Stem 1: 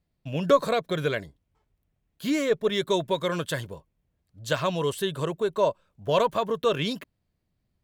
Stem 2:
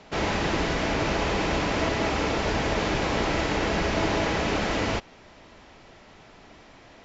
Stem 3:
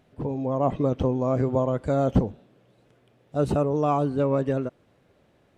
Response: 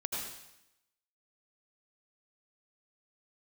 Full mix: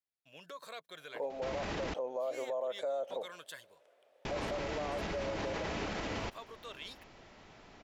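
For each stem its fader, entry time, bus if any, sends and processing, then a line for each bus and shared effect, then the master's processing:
-18.0 dB, 0.00 s, bus A, no send, limiter -16.5 dBFS, peak gain reduction 9 dB; HPF 700 Hz 6 dB/oct
-6.0 dB, 1.30 s, muted 1.94–4.25, no bus, no send, dry
-1.5 dB, 0.95 s, bus A, no send, limiter -20.5 dBFS, peak gain reduction 11 dB; resonant high-pass 570 Hz, resonance Q 4.6; upward expander 1.5:1, over -32 dBFS
bus A: 0.0 dB, tilt shelf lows -4.5 dB, about 750 Hz; compressor, threshold -26 dBFS, peak gain reduction 8 dB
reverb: off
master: limiter -29 dBFS, peak gain reduction 12.5 dB

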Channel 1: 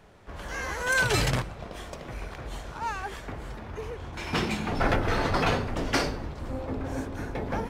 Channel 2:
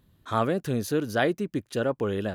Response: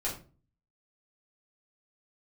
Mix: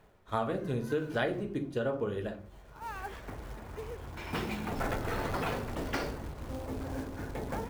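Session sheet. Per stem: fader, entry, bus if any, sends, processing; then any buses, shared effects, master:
-5.5 dB, 0.00 s, send -20.5 dB, high shelf 4700 Hz -11 dB; de-hum 89.82 Hz, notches 2; short-mantissa float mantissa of 2-bit; auto duck -24 dB, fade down 0.75 s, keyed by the second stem
-0.5 dB, 0.00 s, send -4.5 dB, upward expander 2.5:1, over -35 dBFS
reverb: on, RT60 0.35 s, pre-delay 5 ms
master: compressor 4:1, threshold -29 dBFS, peak gain reduction 11 dB

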